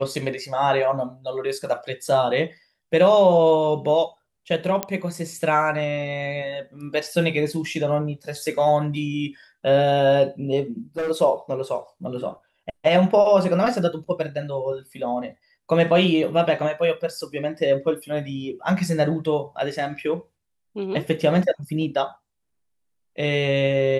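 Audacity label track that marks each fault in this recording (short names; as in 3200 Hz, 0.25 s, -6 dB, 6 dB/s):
4.830000	4.830000	pop -7 dBFS
10.970000	11.110000	clipped -22.5 dBFS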